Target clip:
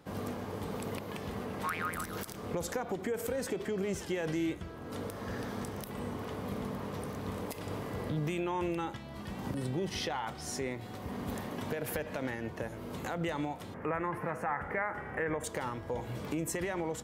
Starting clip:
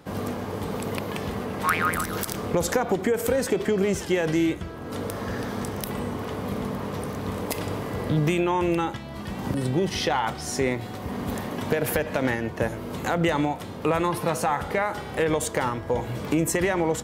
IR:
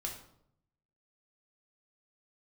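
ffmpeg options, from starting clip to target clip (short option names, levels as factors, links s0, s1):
-filter_complex "[0:a]alimiter=limit=0.15:level=0:latency=1:release=214,asettb=1/sr,asplit=3[s0][s1][s2];[s0]atrim=end=13.744[s3];[s1]atrim=start=13.74:end=15.44,asetpts=PTS-STARTPTS,afade=t=in:d=0.004:c=qsin,afade=t=out:st=1.696:d=0.004:c=qsin,highshelf=f=2700:t=q:w=3:g=-13[s4];[s2]atrim=start=15.436[s5];[s3][s4]acrossfade=d=0.004:c1=hsin:c2=qsin[s6];[s6][s5]acrossfade=d=0.004:c1=qsin:c2=hsin,volume=0.398"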